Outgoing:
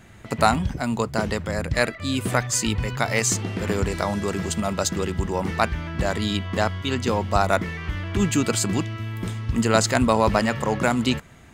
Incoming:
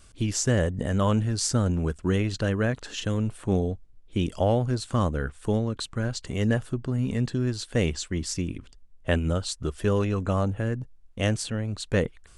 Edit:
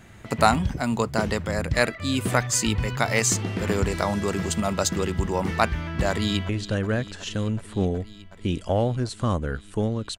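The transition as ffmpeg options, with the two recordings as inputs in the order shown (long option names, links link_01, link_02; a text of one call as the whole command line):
ffmpeg -i cue0.wav -i cue1.wav -filter_complex "[0:a]apad=whole_dur=10.18,atrim=end=10.18,atrim=end=6.492[link_01];[1:a]atrim=start=2.198:end=5.89[link_02];[link_01][link_02]acrossfade=duration=0.004:curve1=hsin:curve2=hsin,asplit=2[link_03][link_04];[link_04]afade=type=in:start_time=6.09:duration=0.01,afade=type=out:start_time=6.49:duration=0.01,aecho=0:1:370|740|1110|1480|1850|2220|2590|2960|3330|3700|4070|4440:0.16788|0.142698|0.121294|0.1031|0.0876346|0.0744894|0.063316|0.0538186|0.0457458|0.0388839|0.0330514|0.0280937[link_05];[link_03][link_05]amix=inputs=2:normalize=0" out.wav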